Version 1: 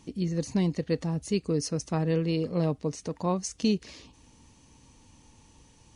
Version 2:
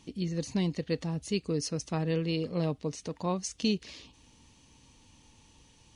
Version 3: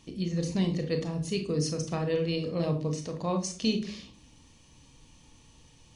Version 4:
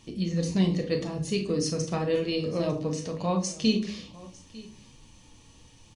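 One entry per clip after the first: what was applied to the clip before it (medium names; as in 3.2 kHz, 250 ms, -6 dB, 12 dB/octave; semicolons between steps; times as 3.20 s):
peaking EQ 3.3 kHz +6.5 dB 1.2 oct; trim -3.5 dB
reverberation RT60 0.45 s, pre-delay 26 ms, DRR 5 dB
delay 900 ms -20.5 dB; flange 0.82 Hz, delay 8.5 ms, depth 2.4 ms, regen -41%; trim +6.5 dB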